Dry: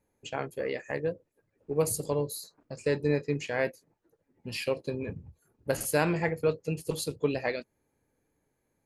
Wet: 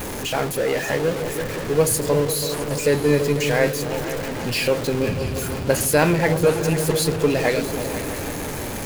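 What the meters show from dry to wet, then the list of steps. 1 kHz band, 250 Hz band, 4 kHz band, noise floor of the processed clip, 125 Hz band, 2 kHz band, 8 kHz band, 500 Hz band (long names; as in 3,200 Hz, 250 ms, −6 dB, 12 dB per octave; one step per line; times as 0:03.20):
+11.5 dB, +11.5 dB, +14.5 dB, −29 dBFS, +11.5 dB, +11.0 dB, +13.5 dB, +10.5 dB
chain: converter with a step at zero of −31 dBFS
echo whose low-pass opens from repeat to repeat 165 ms, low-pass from 200 Hz, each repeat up 2 octaves, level −6 dB
level +7.5 dB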